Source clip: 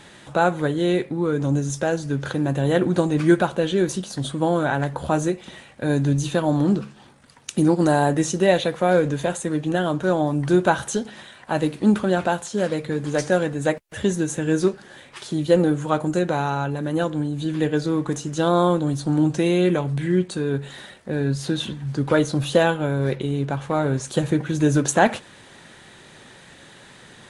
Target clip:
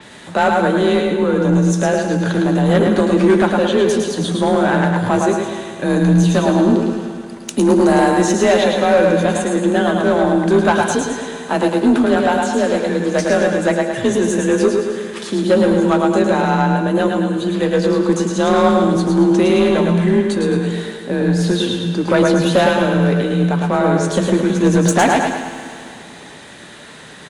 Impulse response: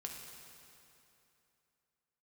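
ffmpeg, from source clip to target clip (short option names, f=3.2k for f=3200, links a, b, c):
-filter_complex "[0:a]asplit=2[a][b];[b]aecho=0:1:107|214|321|428|535:0.562|0.247|0.109|0.0479|0.0211[c];[a][c]amix=inputs=2:normalize=0,afreqshift=33,asoftclip=type=tanh:threshold=-12.5dB,asplit=2[d][e];[1:a]atrim=start_sample=2205,adelay=120[f];[e][f]afir=irnorm=-1:irlink=0,volume=-4.5dB[g];[d][g]amix=inputs=2:normalize=0,adynamicequalizer=threshold=0.00794:dfrequency=6400:dqfactor=0.7:tfrequency=6400:tqfactor=0.7:attack=5:release=100:ratio=0.375:range=2:mode=cutabove:tftype=highshelf,volume=6dB"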